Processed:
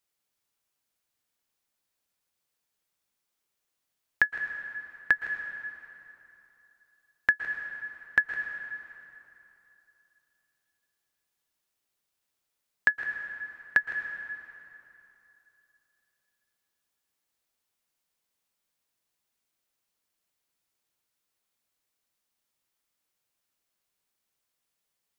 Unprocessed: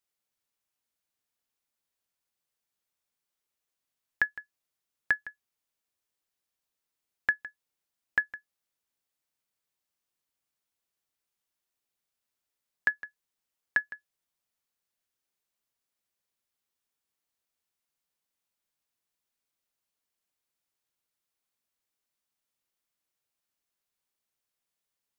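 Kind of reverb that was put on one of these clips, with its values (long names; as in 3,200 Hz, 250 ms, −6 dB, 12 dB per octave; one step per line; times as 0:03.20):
dense smooth reverb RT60 3 s, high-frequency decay 0.75×, pre-delay 105 ms, DRR 6.5 dB
level +3.5 dB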